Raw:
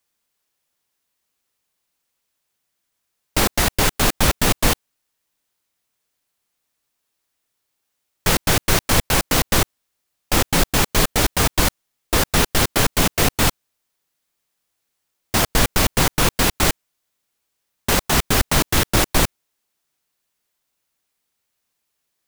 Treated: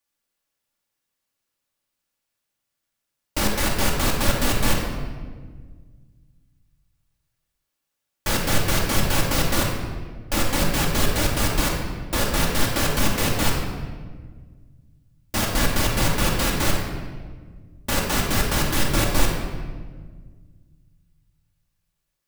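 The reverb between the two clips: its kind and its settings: shoebox room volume 1700 m³, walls mixed, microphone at 2.4 m; gain -8 dB

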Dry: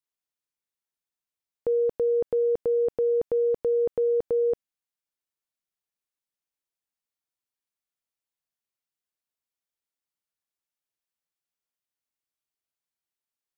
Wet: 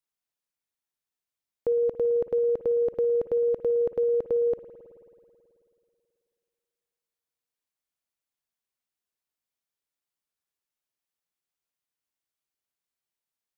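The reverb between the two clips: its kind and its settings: spring tank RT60 2.6 s, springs 54 ms, chirp 35 ms, DRR 10 dB

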